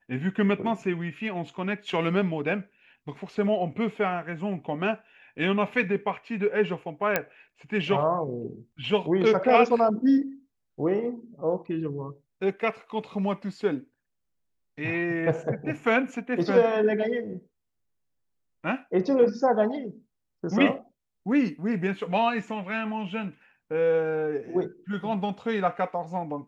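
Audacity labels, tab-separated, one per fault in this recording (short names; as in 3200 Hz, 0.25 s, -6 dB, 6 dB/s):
7.160000	7.160000	pop -8 dBFS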